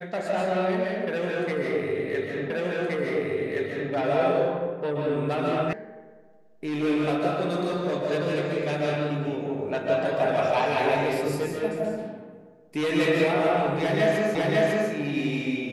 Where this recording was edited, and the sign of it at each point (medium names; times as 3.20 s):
2.50 s: repeat of the last 1.42 s
5.73 s: sound stops dead
14.35 s: repeat of the last 0.55 s